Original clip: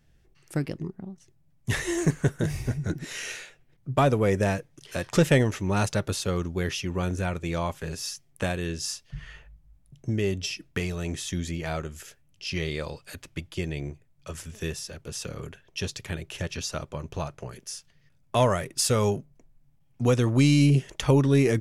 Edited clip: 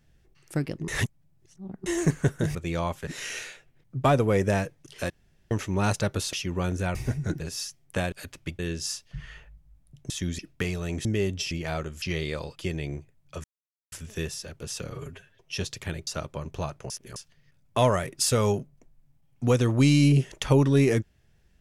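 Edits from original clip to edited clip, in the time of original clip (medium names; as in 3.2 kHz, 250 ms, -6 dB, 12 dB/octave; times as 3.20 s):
0.88–1.86 s: reverse
2.55–3.00 s: swap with 7.34–7.86 s
5.03–5.44 s: room tone
6.26–6.72 s: delete
10.09–10.55 s: swap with 11.21–11.50 s
12.01–12.48 s: delete
13.02–13.49 s: move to 8.58 s
14.37 s: insert silence 0.48 s
15.36–15.80 s: stretch 1.5×
16.30–16.65 s: delete
17.48–17.74 s: reverse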